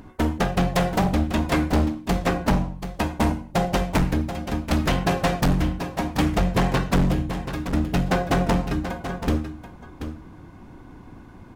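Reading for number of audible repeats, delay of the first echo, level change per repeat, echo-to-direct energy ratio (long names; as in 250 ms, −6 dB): 1, 733 ms, repeats not evenly spaced, −10.0 dB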